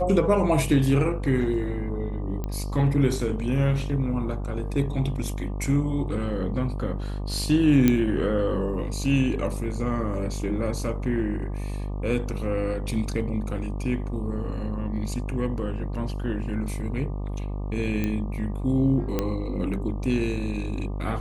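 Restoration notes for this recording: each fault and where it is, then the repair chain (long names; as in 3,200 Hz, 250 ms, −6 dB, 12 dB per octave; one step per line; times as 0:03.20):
mains buzz 50 Hz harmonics 24 −30 dBFS
0:02.44: click −18 dBFS
0:07.88: click −7 dBFS
0:18.04: click −14 dBFS
0:19.19: click −11 dBFS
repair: click removal
hum removal 50 Hz, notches 24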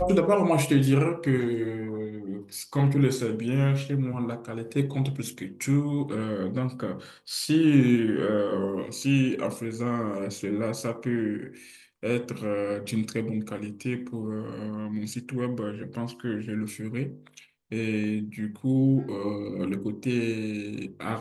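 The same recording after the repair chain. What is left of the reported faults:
none of them is left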